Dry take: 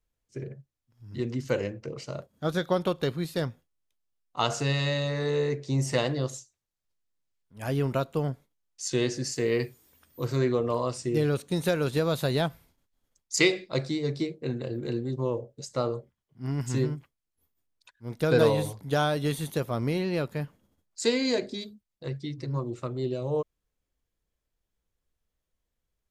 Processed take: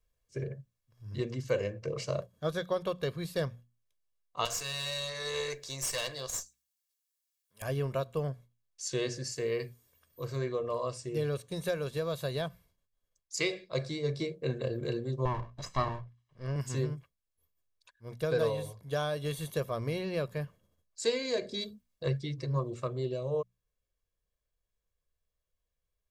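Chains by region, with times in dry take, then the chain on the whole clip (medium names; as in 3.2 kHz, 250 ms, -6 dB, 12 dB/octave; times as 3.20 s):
4.45–7.62 s: tilt EQ +4.5 dB/octave + valve stage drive 24 dB, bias 0.7
15.25–16.56 s: comb filter that takes the minimum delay 1 ms + distance through air 97 m + tape noise reduction on one side only encoder only
whole clip: hum notches 60/120/180/240 Hz; comb 1.8 ms, depth 54%; gain riding; trim -6 dB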